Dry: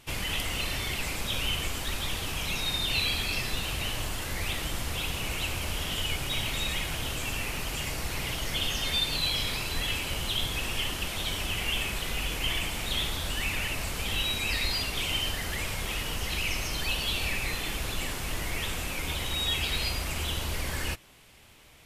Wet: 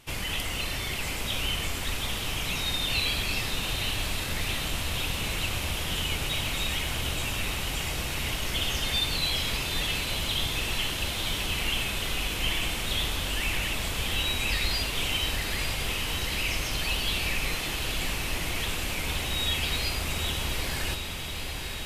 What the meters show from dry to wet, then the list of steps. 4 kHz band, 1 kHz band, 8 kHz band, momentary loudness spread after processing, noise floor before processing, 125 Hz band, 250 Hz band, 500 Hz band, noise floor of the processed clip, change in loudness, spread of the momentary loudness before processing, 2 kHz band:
+1.5 dB, +1.5 dB, +1.5 dB, 4 LU, -35 dBFS, +1.5 dB, +2.0 dB, +1.5 dB, -33 dBFS, +1.5 dB, 5 LU, +1.5 dB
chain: echo that smears into a reverb 907 ms, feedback 76%, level -7 dB

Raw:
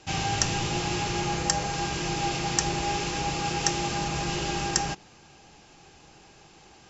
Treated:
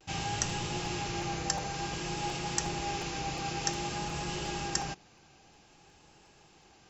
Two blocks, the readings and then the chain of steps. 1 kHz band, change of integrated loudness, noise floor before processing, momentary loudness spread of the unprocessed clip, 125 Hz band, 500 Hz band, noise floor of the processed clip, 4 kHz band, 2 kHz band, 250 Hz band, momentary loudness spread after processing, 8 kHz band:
-6.5 dB, -6.5 dB, -54 dBFS, 3 LU, -6.5 dB, -6.5 dB, -60 dBFS, -6.5 dB, -6.5 dB, -6.5 dB, 3 LU, no reading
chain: vibrato 0.53 Hz 34 cents; crackling interface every 0.36 s, samples 256, repeat, from 0.49 s; trim -6.5 dB

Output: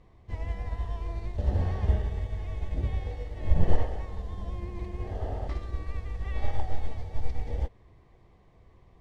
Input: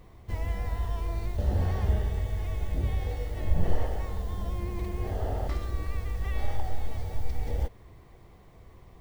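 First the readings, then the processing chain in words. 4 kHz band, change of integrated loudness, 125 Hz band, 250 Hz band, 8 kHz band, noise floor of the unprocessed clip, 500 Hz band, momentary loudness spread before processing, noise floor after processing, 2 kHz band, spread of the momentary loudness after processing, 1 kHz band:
-3.5 dB, -1.0 dB, -1.0 dB, -1.0 dB, no reading, -53 dBFS, -1.5 dB, 8 LU, -58 dBFS, -2.5 dB, 10 LU, -1.5 dB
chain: distance through air 78 m; band-stop 1.4 kHz, Q 12; upward expansion 1.5:1, over -34 dBFS; trim +4.5 dB

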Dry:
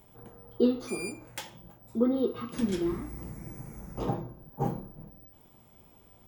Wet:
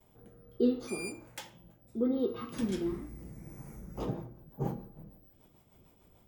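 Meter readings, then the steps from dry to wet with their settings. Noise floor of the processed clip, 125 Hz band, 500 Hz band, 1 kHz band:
-64 dBFS, -3.5 dB, -3.5 dB, -7.5 dB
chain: rotary cabinet horn 0.7 Hz, later 6.7 Hz, at 3.45 s; gate with hold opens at -53 dBFS; de-hum 116.4 Hz, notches 27; trim -2 dB

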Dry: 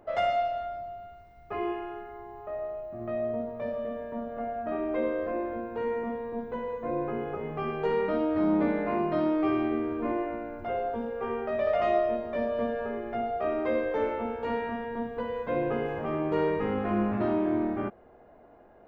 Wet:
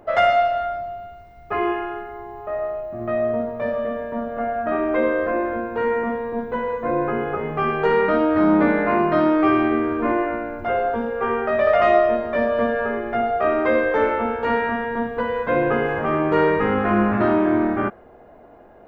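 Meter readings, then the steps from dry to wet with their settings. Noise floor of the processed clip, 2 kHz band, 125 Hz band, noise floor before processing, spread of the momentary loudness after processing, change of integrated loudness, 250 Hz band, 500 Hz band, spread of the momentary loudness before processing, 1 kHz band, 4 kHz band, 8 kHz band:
-46 dBFS, +14.0 dB, +8.0 dB, -54 dBFS, 10 LU, +9.5 dB, +8.0 dB, +9.0 dB, 10 LU, +11.0 dB, +9.5 dB, no reading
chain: dynamic bell 1.5 kHz, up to +8 dB, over -49 dBFS, Q 1.3; trim +8 dB

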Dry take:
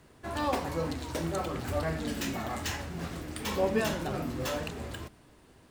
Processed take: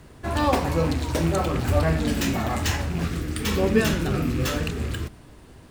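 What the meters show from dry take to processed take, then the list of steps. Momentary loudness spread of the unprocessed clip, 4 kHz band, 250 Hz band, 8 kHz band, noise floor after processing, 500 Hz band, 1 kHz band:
9 LU, +7.5 dB, +10.0 dB, +7.5 dB, -47 dBFS, +7.0 dB, +7.0 dB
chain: rattle on loud lows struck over -36 dBFS, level -38 dBFS; time-frequency box 3.04–5.08 s, 510–1100 Hz -7 dB; bass shelf 150 Hz +8 dB; trim +7.5 dB

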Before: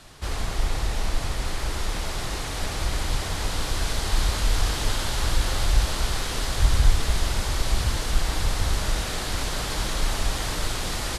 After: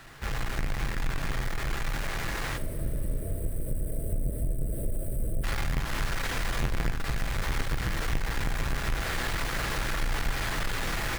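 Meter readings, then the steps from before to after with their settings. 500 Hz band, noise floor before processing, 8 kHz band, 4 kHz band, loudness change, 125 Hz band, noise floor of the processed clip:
-4.0 dB, -30 dBFS, -9.5 dB, -9.0 dB, -5.5 dB, -5.0 dB, -33 dBFS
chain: square wave that keeps the level; time-frequency box 2.57–5.44 s, 680–7900 Hz -29 dB; peaking EQ 1.8 kHz +9.5 dB 1.2 oct; compression, threshold -17 dBFS, peak gain reduction 10 dB; two-slope reverb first 0.28 s, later 4.3 s, from -20 dB, DRR 8 dB; trim -8.5 dB

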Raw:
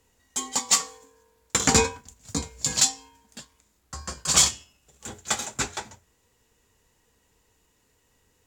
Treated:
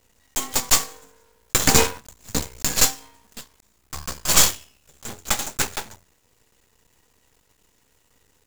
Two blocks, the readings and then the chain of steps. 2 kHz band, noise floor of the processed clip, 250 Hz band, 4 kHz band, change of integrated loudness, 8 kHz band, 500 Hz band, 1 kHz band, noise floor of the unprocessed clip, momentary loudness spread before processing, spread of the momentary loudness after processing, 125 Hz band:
+4.5 dB, -64 dBFS, +2.0 dB, +2.5 dB, +3.0 dB, +2.0 dB, +3.0 dB, +3.0 dB, -68 dBFS, 21 LU, 21 LU, +3.0 dB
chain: block-companded coder 3-bit; half-wave rectifier; trim +7 dB

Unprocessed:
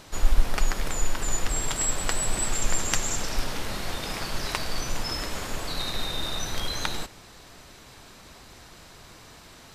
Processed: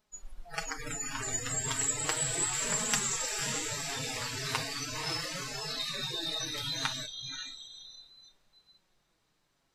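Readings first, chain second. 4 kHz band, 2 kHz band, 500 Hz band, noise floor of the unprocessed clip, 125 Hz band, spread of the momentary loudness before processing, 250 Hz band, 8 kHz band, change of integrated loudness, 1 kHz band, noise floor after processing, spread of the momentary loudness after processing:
-2.0 dB, -3.0 dB, -5.5 dB, -49 dBFS, -7.5 dB, 21 LU, -6.0 dB, -1.5 dB, -3.0 dB, -5.0 dB, -75 dBFS, 12 LU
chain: flange 0.35 Hz, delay 4.6 ms, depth 3.6 ms, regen +4%; echo that smears into a reverb 552 ms, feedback 49%, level -4 dB; spectral noise reduction 26 dB

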